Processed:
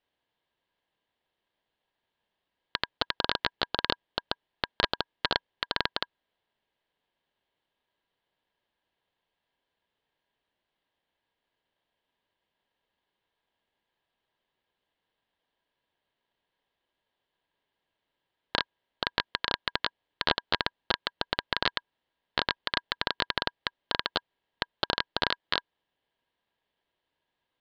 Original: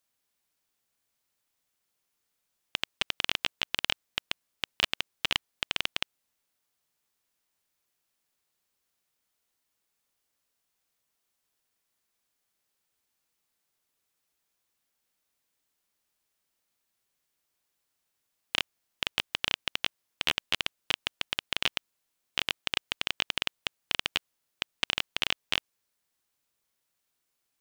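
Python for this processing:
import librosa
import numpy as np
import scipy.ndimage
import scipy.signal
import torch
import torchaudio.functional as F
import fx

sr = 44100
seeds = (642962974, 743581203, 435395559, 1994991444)

y = fx.cabinet(x, sr, low_hz=270.0, low_slope=24, high_hz=2600.0, hz=(330.0, 1100.0, 1800.0), db=(10, -5, 4))
y = y * np.sin(2.0 * np.pi * 1300.0 * np.arange(len(y)) / sr)
y = F.gain(torch.from_numpy(y), 7.5).numpy()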